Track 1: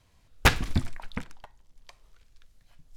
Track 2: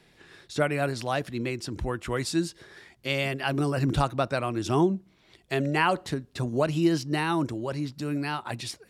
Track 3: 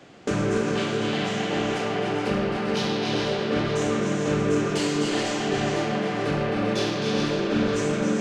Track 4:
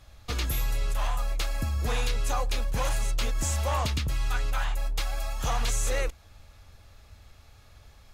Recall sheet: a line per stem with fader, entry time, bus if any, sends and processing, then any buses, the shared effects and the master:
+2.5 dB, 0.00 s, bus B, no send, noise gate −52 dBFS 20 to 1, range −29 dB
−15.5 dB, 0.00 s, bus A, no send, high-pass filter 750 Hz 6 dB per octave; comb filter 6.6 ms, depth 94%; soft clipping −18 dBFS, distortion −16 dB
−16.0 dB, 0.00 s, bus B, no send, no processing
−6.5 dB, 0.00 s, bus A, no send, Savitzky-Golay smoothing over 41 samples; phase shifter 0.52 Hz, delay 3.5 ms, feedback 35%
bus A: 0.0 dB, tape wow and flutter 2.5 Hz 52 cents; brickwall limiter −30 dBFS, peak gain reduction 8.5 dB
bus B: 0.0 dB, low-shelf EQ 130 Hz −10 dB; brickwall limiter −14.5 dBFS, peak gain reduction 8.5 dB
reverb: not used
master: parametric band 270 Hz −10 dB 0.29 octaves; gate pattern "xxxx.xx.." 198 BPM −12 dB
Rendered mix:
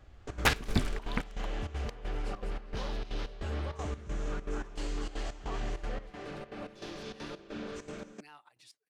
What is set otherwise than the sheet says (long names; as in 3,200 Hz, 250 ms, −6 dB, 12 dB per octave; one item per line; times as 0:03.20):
stem 2 −15.5 dB → −23.5 dB
master: missing parametric band 270 Hz −10 dB 0.29 octaves